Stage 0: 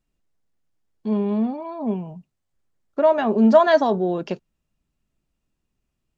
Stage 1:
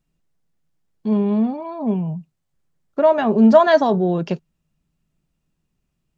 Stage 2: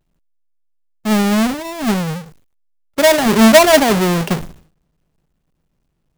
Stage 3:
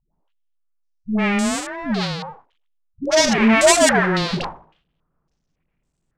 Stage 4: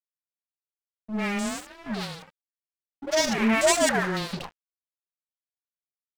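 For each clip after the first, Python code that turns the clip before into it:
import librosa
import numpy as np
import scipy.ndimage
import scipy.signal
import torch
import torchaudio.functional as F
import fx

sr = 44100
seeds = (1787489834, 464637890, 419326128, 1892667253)

y1 = fx.peak_eq(x, sr, hz=160.0, db=11.0, octaves=0.34)
y1 = y1 * 10.0 ** (2.0 / 20.0)
y2 = fx.halfwave_hold(y1, sr)
y2 = fx.sustainer(y2, sr, db_per_s=120.0)
y3 = fx.dispersion(y2, sr, late='highs', ms=136.0, hz=420.0)
y3 = fx.filter_held_lowpass(y3, sr, hz=3.6, low_hz=920.0, high_hz=7900.0)
y3 = y3 * 10.0 ** (-5.5 / 20.0)
y4 = np.sign(y3) * np.maximum(np.abs(y3) - 10.0 ** (-29.0 / 20.0), 0.0)
y4 = y4 * 10.0 ** (-6.5 / 20.0)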